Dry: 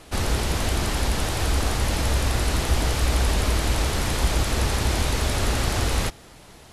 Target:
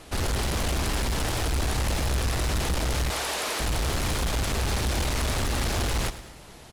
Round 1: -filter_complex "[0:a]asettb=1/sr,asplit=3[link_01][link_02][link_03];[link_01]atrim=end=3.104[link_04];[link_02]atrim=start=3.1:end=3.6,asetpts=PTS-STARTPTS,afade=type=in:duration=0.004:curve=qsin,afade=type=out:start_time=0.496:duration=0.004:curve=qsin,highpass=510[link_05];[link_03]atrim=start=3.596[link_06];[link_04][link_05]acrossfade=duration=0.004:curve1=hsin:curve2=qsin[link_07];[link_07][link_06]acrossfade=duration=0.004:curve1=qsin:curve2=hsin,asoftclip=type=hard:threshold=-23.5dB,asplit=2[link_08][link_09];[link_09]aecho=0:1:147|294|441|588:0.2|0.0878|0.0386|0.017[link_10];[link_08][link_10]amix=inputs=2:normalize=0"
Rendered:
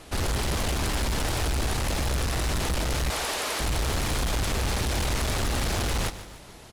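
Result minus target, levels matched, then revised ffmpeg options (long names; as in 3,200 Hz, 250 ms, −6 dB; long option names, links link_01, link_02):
echo 41 ms late
-filter_complex "[0:a]asettb=1/sr,asplit=3[link_01][link_02][link_03];[link_01]atrim=end=3.104[link_04];[link_02]atrim=start=3.1:end=3.6,asetpts=PTS-STARTPTS,afade=type=in:duration=0.004:curve=qsin,afade=type=out:start_time=0.496:duration=0.004:curve=qsin,highpass=510[link_05];[link_03]atrim=start=3.596[link_06];[link_04][link_05]acrossfade=duration=0.004:curve1=hsin:curve2=qsin[link_07];[link_07][link_06]acrossfade=duration=0.004:curve1=qsin:curve2=hsin,asoftclip=type=hard:threshold=-23.5dB,asplit=2[link_08][link_09];[link_09]aecho=0:1:106|212|318|424:0.2|0.0878|0.0386|0.017[link_10];[link_08][link_10]amix=inputs=2:normalize=0"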